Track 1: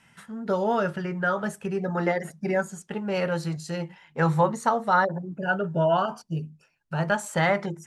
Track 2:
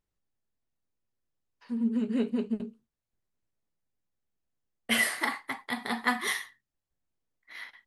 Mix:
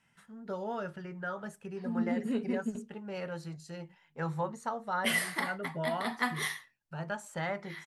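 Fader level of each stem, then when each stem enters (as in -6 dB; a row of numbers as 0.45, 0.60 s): -12.5, -4.0 dB; 0.00, 0.15 s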